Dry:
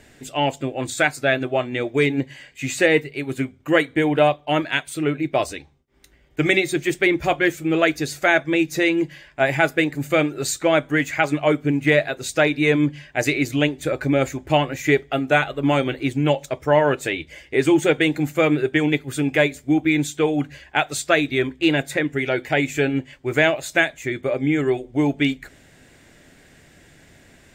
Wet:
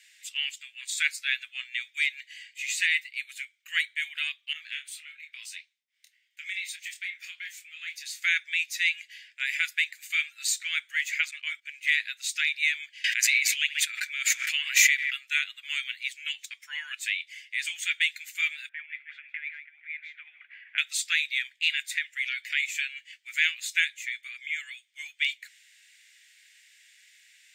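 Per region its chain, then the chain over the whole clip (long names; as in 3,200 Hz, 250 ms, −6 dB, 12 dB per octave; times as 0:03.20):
0:04.53–0:08.24: downward compressor 3 to 1, threshold −23 dBFS + flanger 1.7 Hz, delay 0 ms, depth 8.7 ms, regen +86% + double-tracking delay 26 ms −6.5 dB
0:11.31–0:11.83: high-shelf EQ 5,200 Hz −5 dB + noise gate −32 dBFS, range −13 dB
0:13.04–0:15.14: feedback echo with a band-pass in the loop 67 ms, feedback 72%, band-pass 1,500 Hz, level −18 dB + background raised ahead of every attack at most 21 dB per second
0:18.69–0:20.78: low-pass filter 2,000 Hz 24 dB per octave + echo with shifted repeats 156 ms, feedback 60%, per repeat −31 Hz, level −17 dB + compressor whose output falls as the input rises −23 dBFS
whole clip: Butterworth high-pass 2,000 Hz 36 dB per octave; high-shelf EQ 8,200 Hz −4.5 dB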